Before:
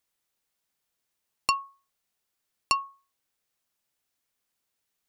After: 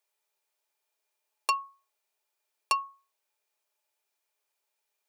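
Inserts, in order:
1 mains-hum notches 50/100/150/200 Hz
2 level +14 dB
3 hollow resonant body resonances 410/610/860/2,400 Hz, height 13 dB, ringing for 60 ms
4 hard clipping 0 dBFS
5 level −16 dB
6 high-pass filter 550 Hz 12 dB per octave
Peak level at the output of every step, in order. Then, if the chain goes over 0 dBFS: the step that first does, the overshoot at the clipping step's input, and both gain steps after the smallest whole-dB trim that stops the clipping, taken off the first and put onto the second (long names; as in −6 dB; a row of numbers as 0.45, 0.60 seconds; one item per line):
−7.5, +6.5, +8.0, 0.0, −16.0, −12.5 dBFS
step 2, 8.0 dB
step 2 +6 dB, step 5 −8 dB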